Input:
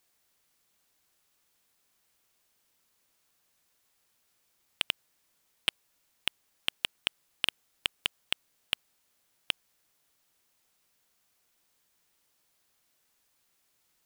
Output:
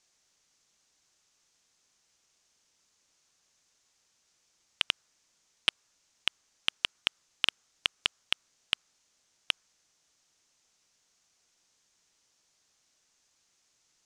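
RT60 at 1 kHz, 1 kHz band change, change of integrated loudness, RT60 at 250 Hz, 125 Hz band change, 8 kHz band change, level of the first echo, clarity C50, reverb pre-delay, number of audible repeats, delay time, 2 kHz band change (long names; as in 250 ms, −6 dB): no reverb audible, +3.0 dB, +2.0 dB, no reverb audible, −1.0 dB, −2.0 dB, no echo audible, no reverb audible, no reverb audible, no echo audible, no echo audible, +2.0 dB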